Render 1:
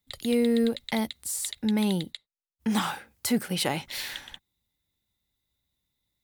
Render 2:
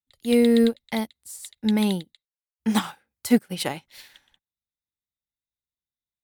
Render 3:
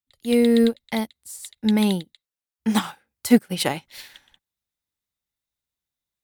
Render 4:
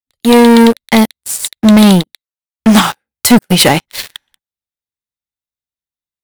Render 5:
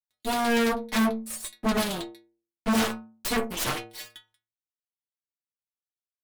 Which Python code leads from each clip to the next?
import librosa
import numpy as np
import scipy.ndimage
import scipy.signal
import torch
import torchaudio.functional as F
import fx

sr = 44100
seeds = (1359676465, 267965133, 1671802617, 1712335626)

y1 = fx.upward_expand(x, sr, threshold_db=-39.0, expansion=2.5)
y1 = y1 * librosa.db_to_amplitude(8.5)
y2 = fx.rider(y1, sr, range_db=10, speed_s=2.0)
y3 = fx.leveller(y2, sr, passes=5)
y3 = y3 * librosa.db_to_amplitude(2.0)
y4 = fx.stiff_resonator(y3, sr, f0_hz=110.0, decay_s=0.51, stiffness=0.008)
y4 = fx.cheby_harmonics(y4, sr, harmonics=(7, 8), levels_db=(-11, -17), full_scale_db=-4.5)
y4 = np.clip(10.0 ** (14.5 / 20.0) * y4, -1.0, 1.0) / 10.0 ** (14.5 / 20.0)
y4 = y4 * librosa.db_to_amplitude(-4.5)